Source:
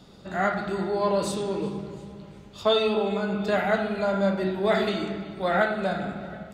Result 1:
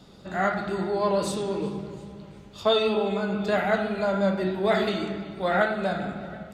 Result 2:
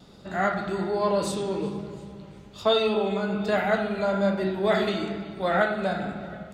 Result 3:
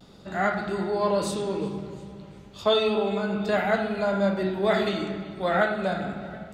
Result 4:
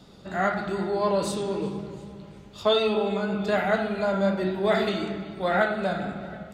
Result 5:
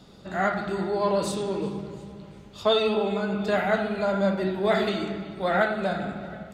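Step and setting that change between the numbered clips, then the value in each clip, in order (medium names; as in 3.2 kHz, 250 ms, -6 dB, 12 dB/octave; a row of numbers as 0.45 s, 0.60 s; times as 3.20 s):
vibrato, rate: 6 Hz, 1.2 Hz, 0.33 Hz, 4 Hz, 13 Hz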